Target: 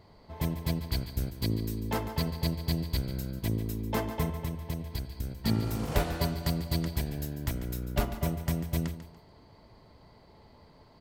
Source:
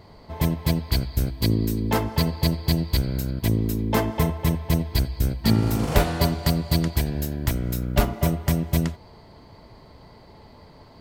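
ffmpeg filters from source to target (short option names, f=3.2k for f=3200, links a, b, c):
-filter_complex "[0:a]asettb=1/sr,asplit=3[a][b][c];[a]atrim=end=4.334[d];[b]atrim=start=4.33:end=5.37,asetpts=PTS-STARTPTS,afade=t=in:d=0.004:c=qsin,afade=t=out:st=1.036:d=0.004:c=qsin,acompressor=threshold=-22dB:ratio=6[e];[c]atrim=start=5.366[f];[d][e]acrossfade=d=0.004:c1=hsin:c2=qsin[g];[g][f]acrossfade=d=0.004:c1=qsin:c2=hsin,aecho=1:1:144|288|432:0.237|0.064|0.0173,volume=-8.5dB"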